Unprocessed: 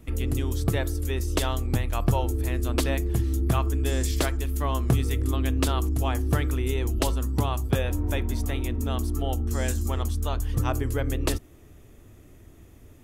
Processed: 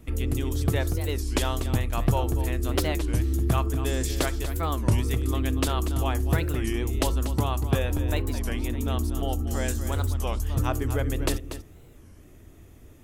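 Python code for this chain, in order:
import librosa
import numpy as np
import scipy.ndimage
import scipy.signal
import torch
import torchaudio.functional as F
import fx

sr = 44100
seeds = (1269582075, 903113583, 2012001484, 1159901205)

y = x + 10.0 ** (-11.0 / 20.0) * np.pad(x, (int(239 * sr / 1000.0), 0))[:len(x)]
y = fx.record_warp(y, sr, rpm=33.33, depth_cents=250.0)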